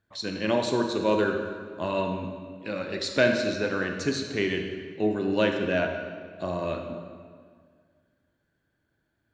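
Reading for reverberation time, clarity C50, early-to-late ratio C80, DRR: 1.8 s, 5.0 dB, 6.5 dB, 4.0 dB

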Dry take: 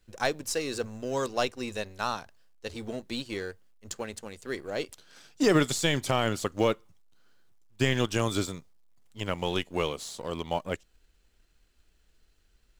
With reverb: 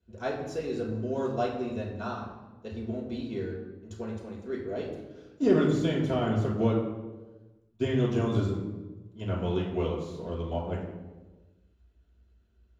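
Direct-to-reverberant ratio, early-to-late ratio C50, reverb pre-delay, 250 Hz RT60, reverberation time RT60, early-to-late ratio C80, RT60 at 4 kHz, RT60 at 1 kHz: −7.5 dB, 3.5 dB, 3 ms, 1.5 s, 1.2 s, 6.0 dB, 0.80 s, 1.1 s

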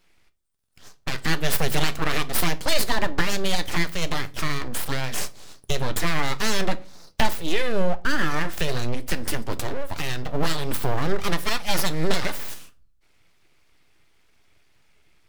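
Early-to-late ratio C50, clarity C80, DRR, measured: 21.0 dB, 26.0 dB, 11.5 dB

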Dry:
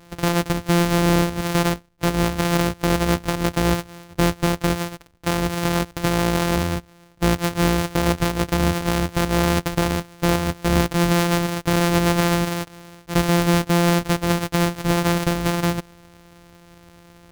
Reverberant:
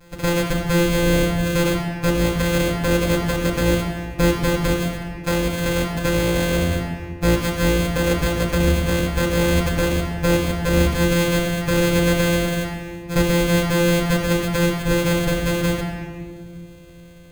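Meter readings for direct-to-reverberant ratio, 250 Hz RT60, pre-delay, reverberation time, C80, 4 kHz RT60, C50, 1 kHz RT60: −10.5 dB, 2.8 s, 7 ms, 1.9 s, 5.0 dB, 1.2 s, 4.0 dB, 1.7 s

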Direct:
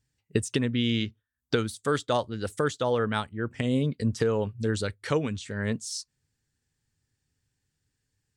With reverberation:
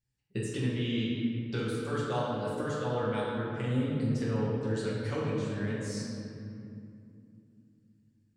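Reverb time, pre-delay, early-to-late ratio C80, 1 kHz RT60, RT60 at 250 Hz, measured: 2.7 s, 5 ms, 0.0 dB, 2.5 s, 4.3 s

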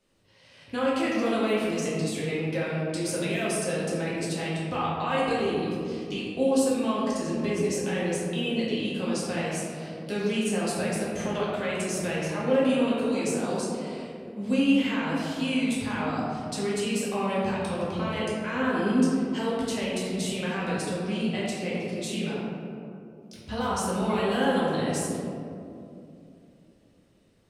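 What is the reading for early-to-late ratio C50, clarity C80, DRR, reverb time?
−2.0 dB, 0.0 dB, −8.0 dB, 2.7 s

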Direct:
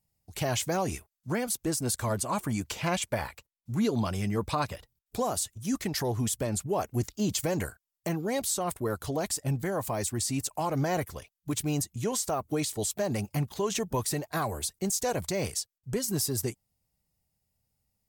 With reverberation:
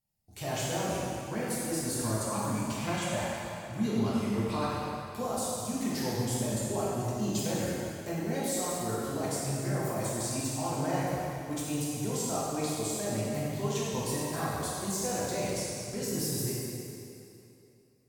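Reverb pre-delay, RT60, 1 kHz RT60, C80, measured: 5 ms, 2.9 s, 2.9 s, −1.5 dB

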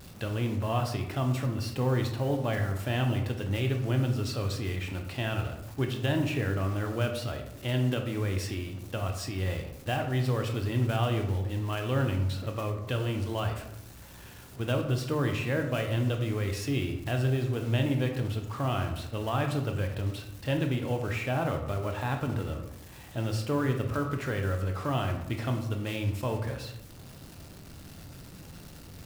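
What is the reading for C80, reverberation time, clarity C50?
9.5 dB, 0.85 s, 7.0 dB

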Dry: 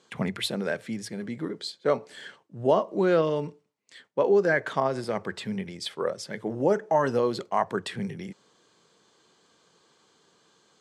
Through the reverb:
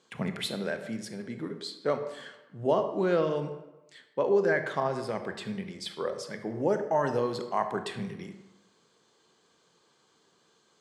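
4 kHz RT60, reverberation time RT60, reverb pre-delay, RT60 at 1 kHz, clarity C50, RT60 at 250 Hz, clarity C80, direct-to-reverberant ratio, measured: 0.65 s, 1.1 s, 24 ms, 1.1 s, 9.0 dB, 1.0 s, 11.0 dB, 7.5 dB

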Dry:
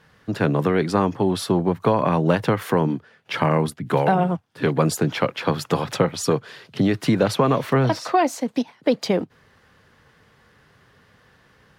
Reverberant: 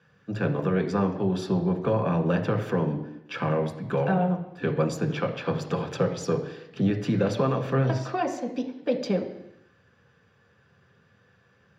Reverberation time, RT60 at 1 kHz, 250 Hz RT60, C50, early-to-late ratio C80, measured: 0.85 s, 0.85 s, 0.85 s, 10.0 dB, 12.0 dB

